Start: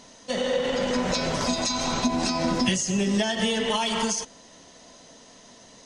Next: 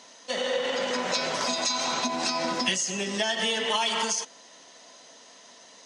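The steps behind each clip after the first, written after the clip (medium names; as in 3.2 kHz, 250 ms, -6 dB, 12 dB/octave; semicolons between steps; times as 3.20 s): frequency weighting A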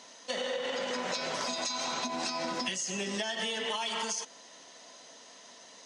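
compression, threshold -29 dBFS, peak gain reduction 8 dB; trim -1.5 dB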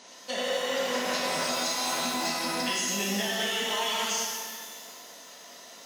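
pitch-shifted reverb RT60 1.7 s, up +12 st, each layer -8 dB, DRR -3 dB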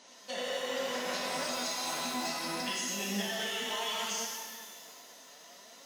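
flange 0.68 Hz, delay 3.2 ms, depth 5 ms, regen +66%; trim -1.5 dB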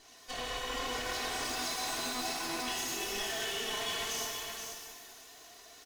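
comb filter that takes the minimum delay 2.7 ms; delay 477 ms -6.5 dB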